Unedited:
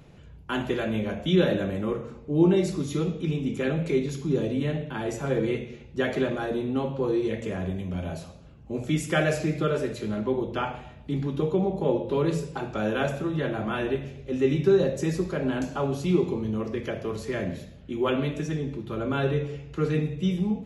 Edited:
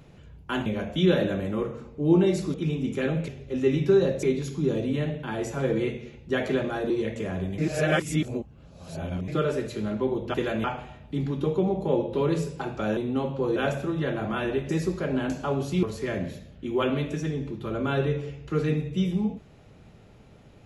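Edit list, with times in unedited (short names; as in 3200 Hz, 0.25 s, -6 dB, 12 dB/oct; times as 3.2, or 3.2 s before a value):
0.66–0.96 move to 10.6
2.84–3.16 cut
6.57–7.16 move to 12.93
7.84–9.54 reverse
14.06–15.01 move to 3.9
16.15–17.09 cut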